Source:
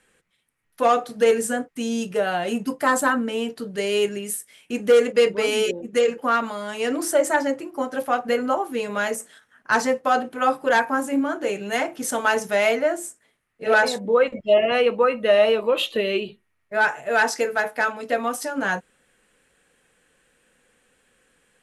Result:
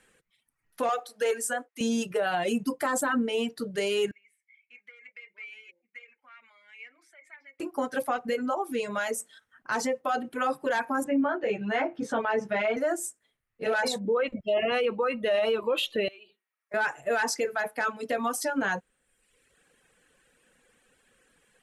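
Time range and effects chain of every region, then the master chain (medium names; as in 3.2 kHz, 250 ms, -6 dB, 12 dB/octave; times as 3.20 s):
0.89–1.81 s: Chebyshev high-pass 570 Hz + short-mantissa float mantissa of 6-bit
4.11–7.60 s: compression 16:1, threshold -22 dBFS + band-pass filter 2.2 kHz, Q 16
8.18–10.29 s: compression 1.5:1, threshold -30 dBFS + band-stop 1.7 kHz, Q 23
11.04–12.77 s: low-pass 2.4 kHz + doubling 14 ms -2.5 dB
16.08–16.74 s: high-pass 580 Hz + compression 2.5:1, threshold -44 dBFS
whole clip: reverb removal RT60 0.91 s; peak limiter -19 dBFS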